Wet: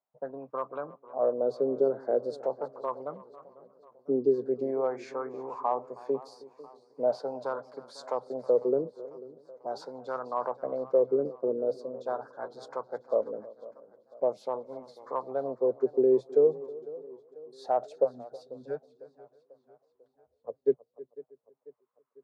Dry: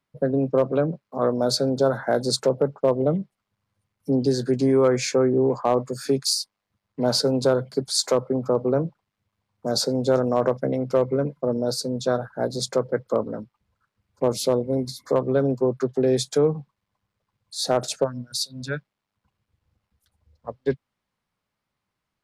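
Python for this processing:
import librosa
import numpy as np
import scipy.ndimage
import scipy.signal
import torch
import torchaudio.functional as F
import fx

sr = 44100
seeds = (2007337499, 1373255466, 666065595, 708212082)

y = fx.wah_lfo(x, sr, hz=0.42, low_hz=390.0, high_hz=1100.0, q=3.8)
y = fx.echo_feedback(y, sr, ms=318, feedback_pct=29, wet_db=-20.0)
y = fx.echo_warbled(y, sr, ms=496, feedback_pct=50, rate_hz=2.8, cents=133, wet_db=-19)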